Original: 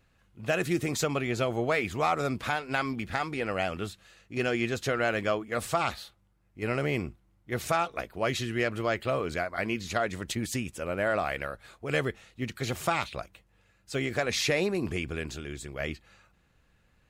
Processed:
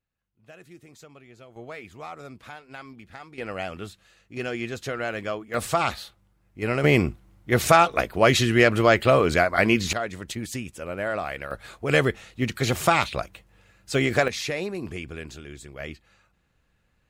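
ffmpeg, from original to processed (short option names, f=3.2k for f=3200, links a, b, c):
-af "asetnsamples=n=441:p=0,asendcmd='1.56 volume volume -12dB;3.38 volume volume -2dB;5.54 volume volume 4.5dB;6.84 volume volume 11dB;9.93 volume volume -0.5dB;11.51 volume volume 8dB;14.28 volume volume -2.5dB',volume=-20dB"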